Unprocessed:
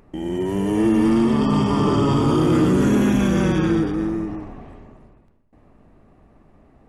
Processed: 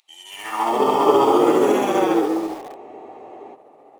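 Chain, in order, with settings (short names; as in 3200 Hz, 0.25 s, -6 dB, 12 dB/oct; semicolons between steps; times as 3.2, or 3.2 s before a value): high-pass sweep 3800 Hz -> 440 Hz, 0.43–1.39; dynamic EQ 1400 Hz, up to +4 dB, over -36 dBFS, Q 1; granular stretch 0.58×, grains 0.136 s; thirty-one-band EQ 200 Hz -6 dB, 800 Hz +10 dB, 1600 Hz -9 dB, 5000 Hz -5 dB; in parallel at -9.5 dB: wrapped overs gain 33.5 dB; on the sum: spectral freeze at 2.78, 0.77 s; gain +2 dB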